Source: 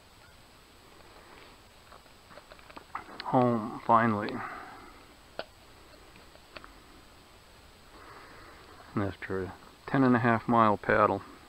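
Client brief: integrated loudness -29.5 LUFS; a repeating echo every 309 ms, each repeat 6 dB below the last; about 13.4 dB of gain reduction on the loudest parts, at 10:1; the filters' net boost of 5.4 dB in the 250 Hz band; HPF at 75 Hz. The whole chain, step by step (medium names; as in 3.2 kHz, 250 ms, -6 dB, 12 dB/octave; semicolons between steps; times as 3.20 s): high-pass 75 Hz; peaking EQ 250 Hz +6 dB; compression 10:1, threshold -29 dBFS; feedback delay 309 ms, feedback 50%, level -6 dB; trim +7.5 dB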